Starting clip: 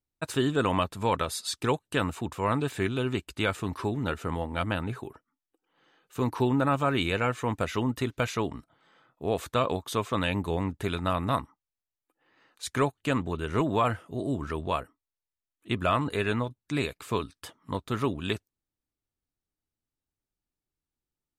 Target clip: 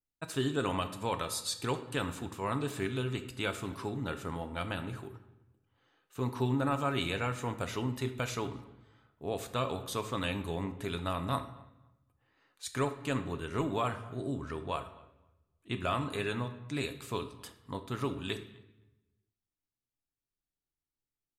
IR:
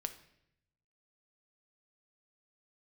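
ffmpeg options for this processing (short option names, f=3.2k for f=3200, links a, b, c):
-filter_complex "[0:a]asettb=1/sr,asplit=3[a][b][c];[a]atrim=end=13.854[d];[b]atrim=start=13.85:end=15.87,asetpts=PTS-STARTPTS,afade=t=in:d=0.004:c=qsin,afade=t=out:st=2.016:d=0.004:c=qsin,lowpass=11k[e];[c]atrim=start=15.866[f];[d][e]acrossfade=d=0.004:c1=hsin:c2=qsin[g];[g][f]acrossfade=d=0.004:c1=qsin:c2=hsin,asplit=2[h][i];[i]adelay=258,lowpass=f=2.3k:p=1,volume=-23dB,asplit=2[j][k];[k]adelay=258,lowpass=f=2.3k:p=1,volume=0.18[l];[h][j][l]amix=inputs=3:normalize=0[m];[1:a]atrim=start_sample=2205,asetrate=36603,aresample=44100[n];[m][n]afir=irnorm=-1:irlink=0,adynamicequalizer=threshold=0.00891:dfrequency=3300:dqfactor=0.7:tfrequency=3300:tqfactor=0.7:attack=5:release=100:ratio=0.375:range=3:mode=boostabove:tftype=highshelf,volume=-6.5dB"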